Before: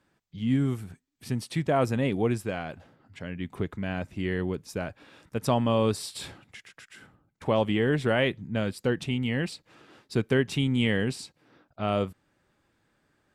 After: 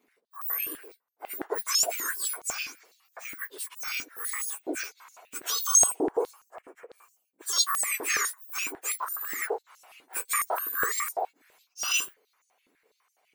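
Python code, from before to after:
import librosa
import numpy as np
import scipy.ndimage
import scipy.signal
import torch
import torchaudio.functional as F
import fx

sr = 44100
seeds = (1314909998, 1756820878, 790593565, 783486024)

y = fx.octave_mirror(x, sr, pivot_hz=1900.0)
y = fx.graphic_eq_10(y, sr, hz=(2000, 4000, 8000), db=(-10, -11, 5), at=(5.61, 7.53))
y = fx.buffer_glitch(y, sr, at_s=(7.53,), block=128, repeats=10)
y = fx.filter_held_highpass(y, sr, hz=12.0, low_hz=290.0, high_hz=6300.0)
y = y * 10.0 ** (1.5 / 20.0)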